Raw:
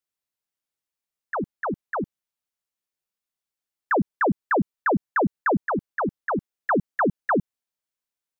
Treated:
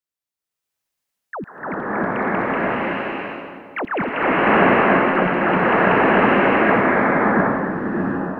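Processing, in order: rattle on loud lows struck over -25 dBFS, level -36 dBFS; two-band feedback delay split 880 Hz, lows 311 ms, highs 142 ms, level -11 dB; ever faster or slower copies 660 ms, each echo +4 st, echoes 2; 4.30–5.08 s: feedback comb 180 Hz, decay 0.18 s, harmonics all, mix 70%; 6.88–7.36 s: compression, threshold -37 dBFS, peak gain reduction 17.5 dB; swelling reverb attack 710 ms, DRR -10.5 dB; trim -2.5 dB

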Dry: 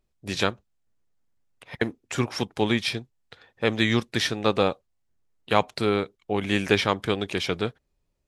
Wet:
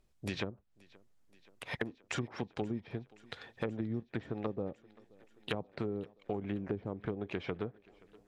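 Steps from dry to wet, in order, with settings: low-pass that closes with the level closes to 420 Hz, closed at -20 dBFS; compression 4:1, threshold -39 dBFS, peak gain reduction 17.5 dB; on a send: thinning echo 527 ms, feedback 76%, high-pass 160 Hz, level -24 dB; on the sum: trim +3 dB

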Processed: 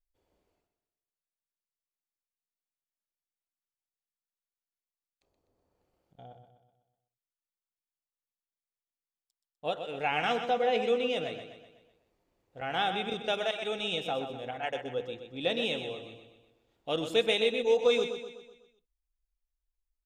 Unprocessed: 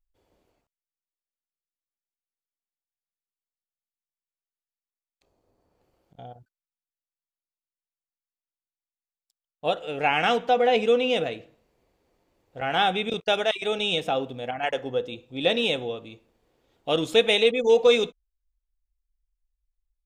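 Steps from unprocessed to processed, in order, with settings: feedback delay 125 ms, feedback 49%, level -9 dB; trim -7.5 dB

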